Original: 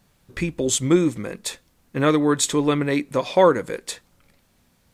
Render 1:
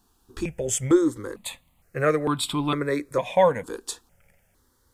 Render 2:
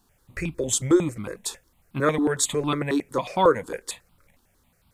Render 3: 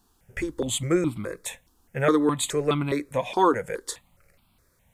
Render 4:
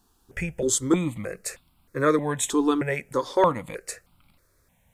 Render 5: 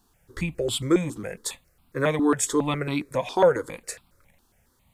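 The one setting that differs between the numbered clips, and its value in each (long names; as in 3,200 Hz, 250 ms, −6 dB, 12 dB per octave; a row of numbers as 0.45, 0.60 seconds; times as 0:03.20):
step-sequenced phaser, speed: 2.2, 11, 4.8, 3.2, 7.3 Hertz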